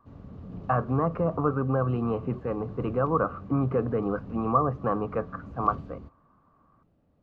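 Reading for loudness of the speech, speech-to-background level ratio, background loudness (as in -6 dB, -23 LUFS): -28.0 LUFS, 15.0 dB, -43.0 LUFS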